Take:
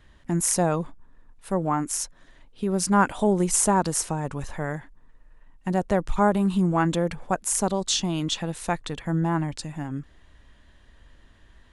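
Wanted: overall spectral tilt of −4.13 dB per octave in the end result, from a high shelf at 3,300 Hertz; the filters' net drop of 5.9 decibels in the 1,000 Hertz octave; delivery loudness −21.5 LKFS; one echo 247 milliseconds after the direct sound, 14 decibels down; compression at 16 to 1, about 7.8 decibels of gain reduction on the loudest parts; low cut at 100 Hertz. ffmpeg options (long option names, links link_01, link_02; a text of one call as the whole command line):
ffmpeg -i in.wav -af "highpass=100,equalizer=frequency=1000:width_type=o:gain=-8,highshelf=frequency=3300:gain=3,acompressor=threshold=-24dB:ratio=16,aecho=1:1:247:0.2,volume=8.5dB" out.wav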